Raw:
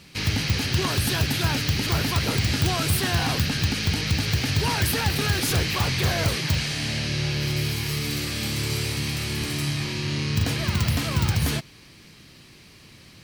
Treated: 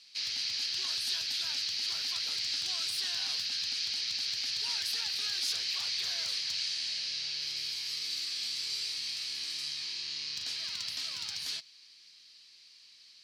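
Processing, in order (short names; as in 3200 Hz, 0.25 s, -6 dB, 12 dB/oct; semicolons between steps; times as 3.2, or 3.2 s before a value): band-pass 4600 Hz, Q 2.8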